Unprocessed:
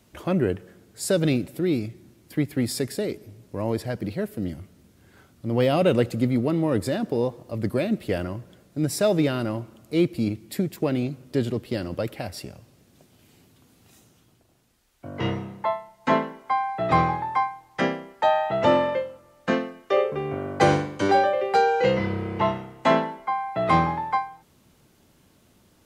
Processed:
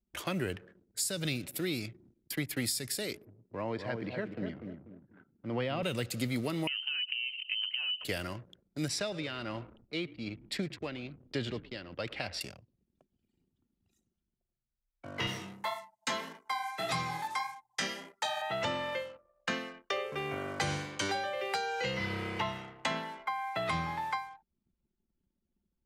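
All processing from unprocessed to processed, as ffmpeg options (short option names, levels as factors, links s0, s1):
-filter_complex "[0:a]asettb=1/sr,asplit=3[s0][s1][s2];[s0]atrim=end=3.254[s3];[s1]atrim=start=3.25:end=5.83,asetpts=PTS-STARTPTS,afade=t=in:d=0.004:c=qsin,afade=t=out:st=2.576:d=0.004:c=qsin,highpass=110,lowpass=2100,asplit=2[s4][s5];[s5]adelay=244,lowpass=f=950:p=1,volume=0.531,asplit=2[s6][s7];[s7]adelay=244,lowpass=f=950:p=1,volume=0.37,asplit=2[s8][s9];[s9]adelay=244,lowpass=f=950:p=1,volume=0.37,asplit=2[s10][s11];[s11]adelay=244,lowpass=f=950:p=1,volume=0.37[s12];[s4][s6][s8][s10][s12]amix=inputs=5:normalize=0,atrim=end_sample=113778[s13];[s2]atrim=start=5.826[s14];[s3][s13]acrossfade=d=0.004:c1=hsin:c2=qsin[s15];[s15][s14]acrossfade=d=0.004:c1=qsin:c2=hsin,asettb=1/sr,asplit=3[s16][s17][s18];[s16]atrim=end=6.674[s19];[s17]atrim=start=6.67:end=8.05,asetpts=PTS-STARTPTS,afade=t=in:d=0.004:c=qsin,afade=t=out:st=1.376:d=0.004:c=qsin,aemphasis=mode=production:type=cd,acompressor=threshold=0.0316:ratio=8:attack=3.2:release=140:knee=1:detection=peak,lowpass=f=2700:t=q:w=0.5098,lowpass=f=2700:t=q:w=0.6013,lowpass=f=2700:t=q:w=0.9,lowpass=f=2700:t=q:w=2.563,afreqshift=-3200[s20];[s18]atrim=start=8.046[s21];[s19][s20]acrossfade=d=0.004:c1=hsin:c2=qsin[s22];[s22][s21]acrossfade=d=0.004:c1=qsin:c2=hsin,asettb=1/sr,asplit=3[s23][s24][s25];[s23]atrim=end=8.884[s26];[s24]atrim=start=8.88:end=12.41,asetpts=PTS-STARTPTS,afade=t=in:d=0.004:c=qsin,afade=t=out:st=3.526:d=0.004:c=qsin,lowpass=3800,tremolo=f=1.2:d=0.66,asplit=5[s27][s28][s29][s30][s31];[s28]adelay=108,afreqshift=-53,volume=0.112[s32];[s29]adelay=216,afreqshift=-106,volume=0.0537[s33];[s30]adelay=324,afreqshift=-159,volume=0.0257[s34];[s31]adelay=432,afreqshift=-212,volume=0.0124[s35];[s27][s32][s33][s34][s35]amix=inputs=5:normalize=0,atrim=end_sample=155673[s36];[s25]atrim=start=12.406[s37];[s26][s36]acrossfade=d=0.004:c1=hsin:c2=qsin[s38];[s38][s37]acrossfade=d=0.004:c1=qsin:c2=hsin,asettb=1/sr,asplit=3[s39][s40][s41];[s39]atrim=end=15.274[s42];[s40]atrim=start=15.27:end=18.42,asetpts=PTS-STARTPTS,afade=t=in:d=0.004:c=qsin,afade=t=out:st=3.146:d=0.004:c=qsin,highpass=140,bass=f=250:g=4,treble=f=4000:g=13,flanger=delay=16:depth=5.2:speed=1.7[s43];[s41]atrim=start=18.416[s44];[s42][s43]acrossfade=d=0.004:c1=hsin:c2=qsin[s45];[s45][s44]acrossfade=d=0.004:c1=qsin:c2=hsin,anlmdn=0.0158,tiltshelf=f=1300:g=-10,acrossover=split=180[s46][s47];[s47]acompressor=threshold=0.0282:ratio=10[s48];[s46][s48]amix=inputs=2:normalize=0"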